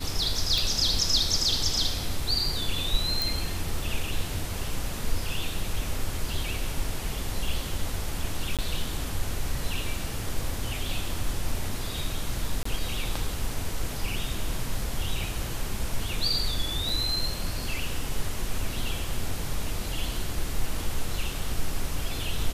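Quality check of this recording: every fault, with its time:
0.58 pop
3.22 pop
8.57–8.59 gap 17 ms
12.63–12.65 gap 24 ms
16.89 gap 3.5 ms

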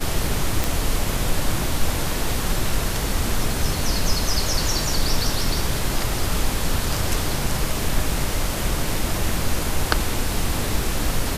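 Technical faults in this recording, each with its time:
0.64 pop

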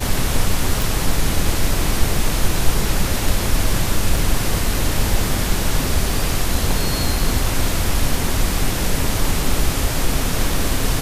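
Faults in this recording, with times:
0.82 pop
4.17 gap 2.5 ms

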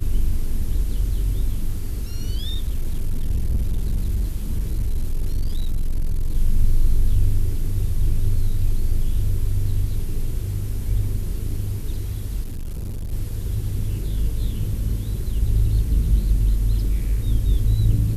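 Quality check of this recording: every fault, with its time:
2.35–6.34 clipped -17 dBFS
12.43–13.13 clipped -25.5 dBFS

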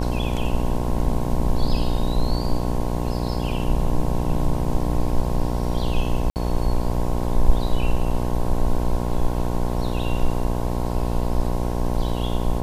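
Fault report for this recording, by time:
buzz 60 Hz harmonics 18 -25 dBFS
6.3–6.36 gap 59 ms

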